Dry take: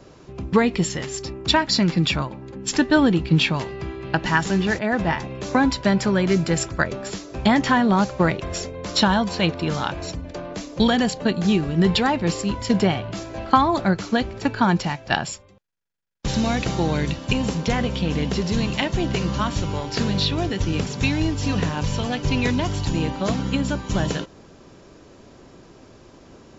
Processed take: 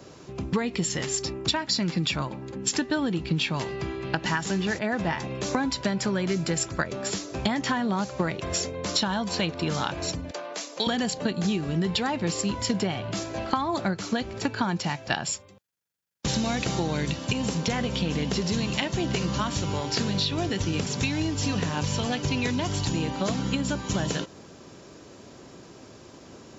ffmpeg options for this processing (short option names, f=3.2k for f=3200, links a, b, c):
-filter_complex "[0:a]asettb=1/sr,asplit=3[a][b][c];[a]atrim=end=10.314[d];[b]atrim=start=10.31:end=10.87,asetpts=PTS-STARTPTS,afade=t=in:d=0.004:c=qsin,afade=t=out:st=0.556:d=0.004:c=qsin,highpass=550[e];[c]atrim=start=10.866[f];[d][e]acrossfade=d=0.004:c1=hsin:c2=qsin[g];[g][f]acrossfade=d=0.004:c1=qsin:c2=hsin,highpass=78,highshelf=f=5.2k:g=8,acompressor=threshold=-23dB:ratio=6"